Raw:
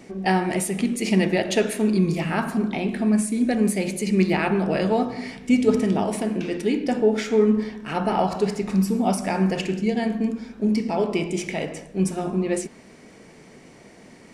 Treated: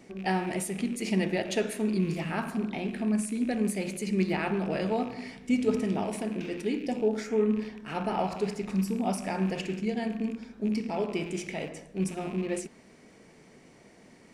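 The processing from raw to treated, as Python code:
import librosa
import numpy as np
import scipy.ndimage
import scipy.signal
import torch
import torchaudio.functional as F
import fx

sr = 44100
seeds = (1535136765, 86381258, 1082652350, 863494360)

y = fx.rattle_buzz(x, sr, strikes_db=-34.0, level_db=-29.0)
y = fx.peak_eq(y, sr, hz=fx.line((6.77, 950.0), (7.49, 5800.0)), db=-14.5, octaves=0.45, at=(6.77, 7.49), fade=0.02)
y = y * 10.0 ** (-7.5 / 20.0)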